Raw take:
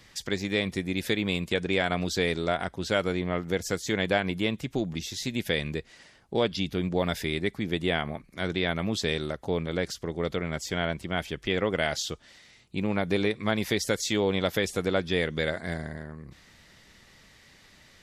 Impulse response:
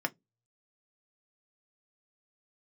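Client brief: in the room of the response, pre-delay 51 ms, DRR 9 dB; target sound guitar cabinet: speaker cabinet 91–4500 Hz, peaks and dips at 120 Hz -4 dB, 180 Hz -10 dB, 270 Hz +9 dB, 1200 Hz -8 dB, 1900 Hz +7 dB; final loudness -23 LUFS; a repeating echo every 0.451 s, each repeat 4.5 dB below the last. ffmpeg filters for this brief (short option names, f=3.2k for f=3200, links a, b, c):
-filter_complex "[0:a]aecho=1:1:451|902|1353|1804|2255|2706|3157|3608|4059:0.596|0.357|0.214|0.129|0.0772|0.0463|0.0278|0.0167|0.01,asplit=2[a][b];[1:a]atrim=start_sample=2205,adelay=51[c];[b][c]afir=irnorm=-1:irlink=0,volume=-14.5dB[d];[a][d]amix=inputs=2:normalize=0,highpass=91,equalizer=f=120:t=q:w=4:g=-4,equalizer=f=180:t=q:w=4:g=-10,equalizer=f=270:t=q:w=4:g=9,equalizer=f=1.2k:t=q:w=4:g=-8,equalizer=f=1.9k:t=q:w=4:g=7,lowpass=f=4.5k:w=0.5412,lowpass=f=4.5k:w=1.3066,volume=3dB"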